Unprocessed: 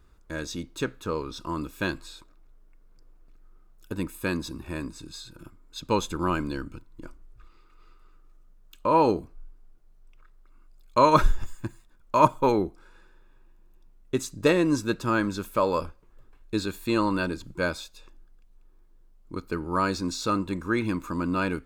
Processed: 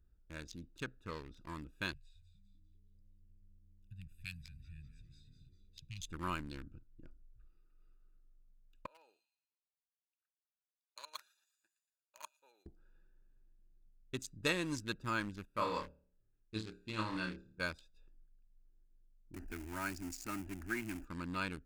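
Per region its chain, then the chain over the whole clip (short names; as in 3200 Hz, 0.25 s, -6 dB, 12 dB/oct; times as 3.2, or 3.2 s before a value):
1.93–6.09 Chebyshev band-stop 140–2200 Hz, order 3 + frequency-shifting echo 0.199 s, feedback 47%, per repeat -110 Hz, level -7.5 dB
8.86–12.66 HPF 590 Hz + differentiator + thin delay 0.116 s, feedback 43%, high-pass 3500 Hz, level -3.5 dB
15.45–17.6 air absorption 57 m + flutter echo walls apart 4.7 m, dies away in 0.51 s + upward expander, over -37 dBFS
19.34–21.05 zero-crossing step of -29 dBFS + fixed phaser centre 740 Hz, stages 8
whole clip: Wiener smoothing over 41 samples; passive tone stack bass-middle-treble 5-5-5; gain +3.5 dB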